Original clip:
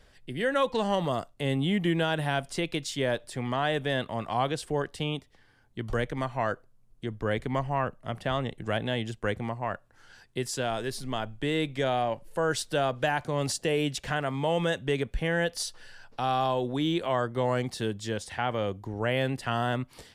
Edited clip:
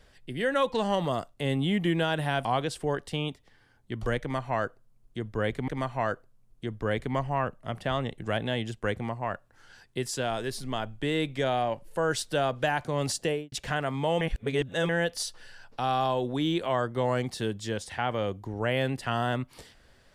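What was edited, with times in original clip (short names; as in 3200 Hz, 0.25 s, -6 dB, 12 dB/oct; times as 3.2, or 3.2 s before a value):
2.45–4.32 cut
6.08–7.55 loop, 2 plays
13.65–13.92 studio fade out
14.61–15.29 reverse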